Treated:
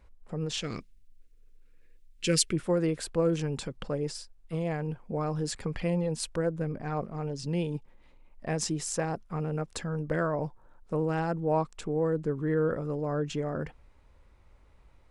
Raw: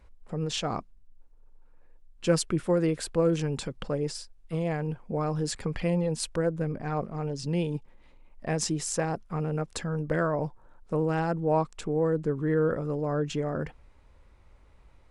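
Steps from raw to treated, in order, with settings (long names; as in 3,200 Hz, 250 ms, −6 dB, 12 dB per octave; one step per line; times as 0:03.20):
0:00.62–0:02.53: drawn EQ curve 470 Hz 0 dB, 780 Hz −20 dB, 2,100 Hz +8 dB
level −2 dB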